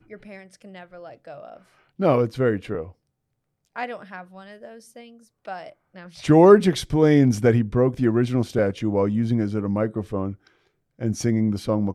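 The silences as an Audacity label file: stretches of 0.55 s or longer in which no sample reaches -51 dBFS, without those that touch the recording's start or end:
2.930000	3.650000	silence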